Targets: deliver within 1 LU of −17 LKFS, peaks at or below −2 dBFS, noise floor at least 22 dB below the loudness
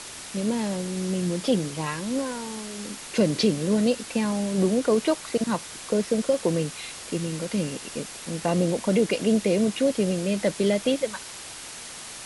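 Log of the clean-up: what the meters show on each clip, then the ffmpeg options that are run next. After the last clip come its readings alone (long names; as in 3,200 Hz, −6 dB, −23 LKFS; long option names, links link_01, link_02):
background noise floor −40 dBFS; target noise floor −48 dBFS; integrated loudness −25.5 LKFS; sample peak −9.5 dBFS; target loudness −17.0 LKFS
→ -af "afftdn=noise_reduction=8:noise_floor=-40"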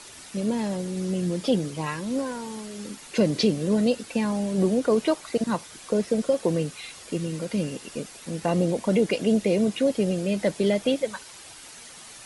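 background noise floor −45 dBFS; target noise floor −48 dBFS
→ -af "afftdn=noise_reduction=6:noise_floor=-45"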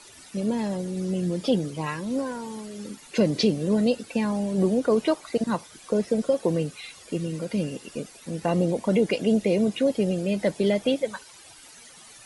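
background noise floor −49 dBFS; integrated loudness −25.5 LKFS; sample peak −9.5 dBFS; target loudness −17.0 LKFS
→ -af "volume=8.5dB,alimiter=limit=-2dB:level=0:latency=1"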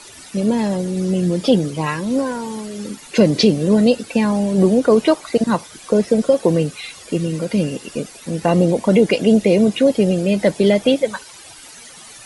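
integrated loudness −17.0 LKFS; sample peak −2.0 dBFS; background noise floor −40 dBFS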